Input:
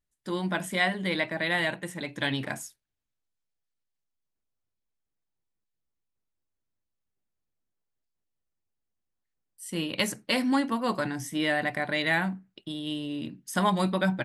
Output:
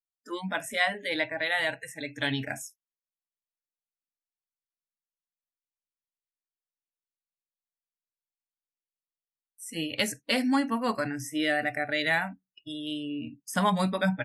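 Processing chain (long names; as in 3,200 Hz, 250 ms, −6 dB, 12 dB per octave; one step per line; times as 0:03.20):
noise reduction from a noise print of the clip's start 28 dB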